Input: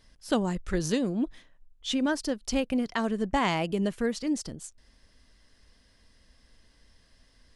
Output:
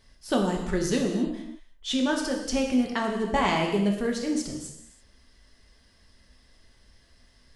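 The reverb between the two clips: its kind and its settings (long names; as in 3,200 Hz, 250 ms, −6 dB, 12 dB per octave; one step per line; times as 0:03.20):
reverb whose tail is shaped and stops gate 360 ms falling, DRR 0.5 dB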